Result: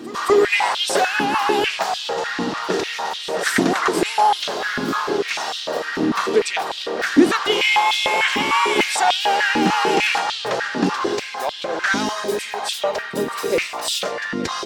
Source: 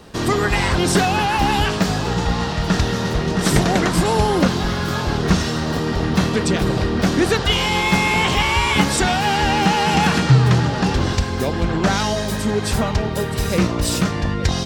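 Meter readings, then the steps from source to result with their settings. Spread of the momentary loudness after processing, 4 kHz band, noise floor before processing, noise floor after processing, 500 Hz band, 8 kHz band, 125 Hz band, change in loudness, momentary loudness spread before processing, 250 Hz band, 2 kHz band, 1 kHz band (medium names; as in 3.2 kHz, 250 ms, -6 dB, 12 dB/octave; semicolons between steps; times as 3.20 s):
8 LU, +0.5 dB, -23 dBFS, -31 dBFS, +0.5 dB, -2.5 dB, -19.0 dB, -1.5 dB, 5 LU, -4.0 dB, +1.5 dB, +1.0 dB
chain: pre-echo 219 ms -16 dB; step-sequenced high-pass 6.7 Hz 270–3300 Hz; trim -3 dB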